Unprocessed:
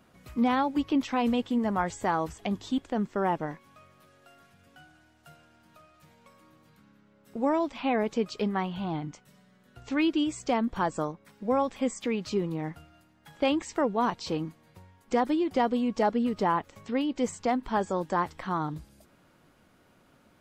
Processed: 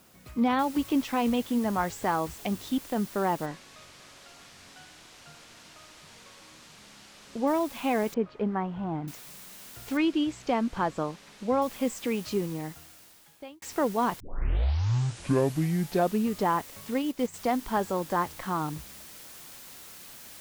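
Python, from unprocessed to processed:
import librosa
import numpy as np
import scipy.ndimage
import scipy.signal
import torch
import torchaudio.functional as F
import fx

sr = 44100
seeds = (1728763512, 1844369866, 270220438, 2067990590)

y = fx.noise_floor_step(x, sr, seeds[0], at_s=0.59, before_db=-61, after_db=-47, tilt_db=0.0)
y = fx.lowpass(y, sr, hz=6000.0, slope=12, at=(3.45, 7.46), fade=0.02)
y = fx.lowpass(y, sr, hz=1500.0, slope=12, at=(8.14, 9.08))
y = fx.bessel_lowpass(y, sr, hz=4600.0, order=2, at=(9.97, 11.62))
y = fx.transient(y, sr, attack_db=-1, sustain_db=-9, at=(16.94, 17.34))
y = fx.edit(y, sr, fx.fade_out_span(start_s=12.31, length_s=1.31),
    fx.tape_start(start_s=14.2, length_s=2.18), tone=tone)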